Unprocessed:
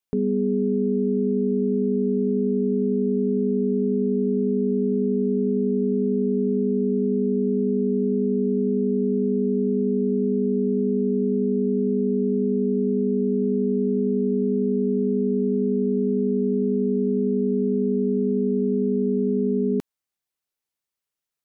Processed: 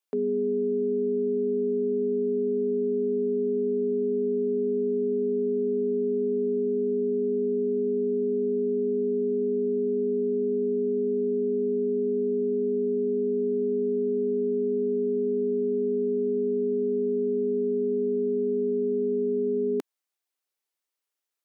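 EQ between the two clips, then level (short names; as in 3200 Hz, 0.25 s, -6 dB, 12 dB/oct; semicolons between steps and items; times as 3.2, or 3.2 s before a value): HPF 290 Hz 24 dB/oct; 0.0 dB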